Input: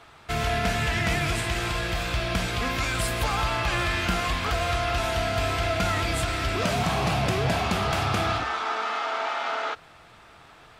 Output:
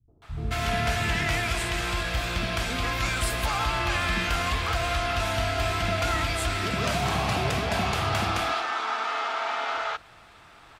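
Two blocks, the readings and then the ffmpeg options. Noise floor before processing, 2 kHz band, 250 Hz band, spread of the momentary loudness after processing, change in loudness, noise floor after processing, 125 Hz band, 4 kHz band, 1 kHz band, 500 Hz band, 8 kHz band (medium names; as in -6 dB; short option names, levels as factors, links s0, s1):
-51 dBFS, 0.0 dB, -2.5 dB, 3 LU, -0.5 dB, -52 dBFS, -1.5 dB, 0.0 dB, -0.5 dB, -2.0 dB, 0.0 dB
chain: -filter_complex "[0:a]acrossover=split=150|450[s0][s1][s2];[s1]adelay=80[s3];[s2]adelay=220[s4];[s0][s3][s4]amix=inputs=3:normalize=0"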